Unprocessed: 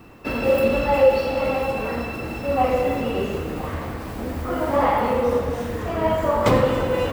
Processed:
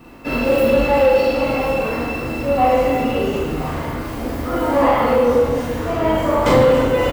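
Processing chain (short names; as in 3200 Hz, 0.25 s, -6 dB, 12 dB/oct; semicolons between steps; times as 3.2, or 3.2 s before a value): doubler 41 ms -6 dB; two-slope reverb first 0.54 s, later 2.4 s, from -25 dB, DRR -2 dB; soft clip -4.5 dBFS, distortion -22 dB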